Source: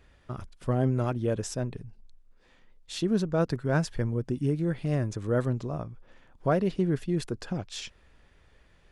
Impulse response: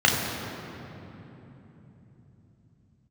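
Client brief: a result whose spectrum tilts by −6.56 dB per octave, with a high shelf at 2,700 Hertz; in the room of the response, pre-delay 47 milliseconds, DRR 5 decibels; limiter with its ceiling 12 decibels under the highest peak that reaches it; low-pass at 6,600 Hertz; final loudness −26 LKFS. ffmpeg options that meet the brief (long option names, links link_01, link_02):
-filter_complex "[0:a]lowpass=6600,highshelf=frequency=2700:gain=5.5,alimiter=limit=-24dB:level=0:latency=1,asplit=2[link_01][link_02];[1:a]atrim=start_sample=2205,adelay=47[link_03];[link_02][link_03]afir=irnorm=-1:irlink=0,volume=-24.5dB[link_04];[link_01][link_04]amix=inputs=2:normalize=0,volume=7dB"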